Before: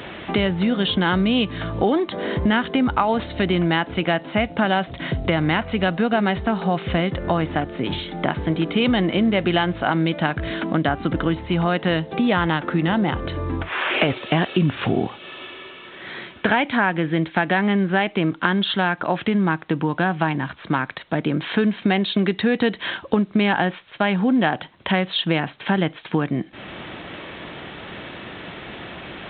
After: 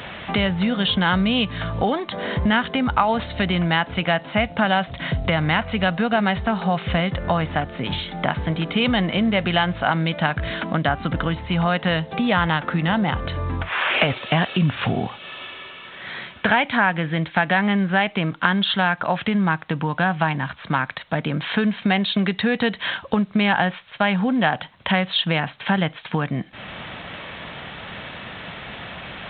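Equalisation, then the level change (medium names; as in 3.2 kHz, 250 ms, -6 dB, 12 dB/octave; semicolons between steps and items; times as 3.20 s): peaking EQ 340 Hz -11 dB 0.75 oct; +2.0 dB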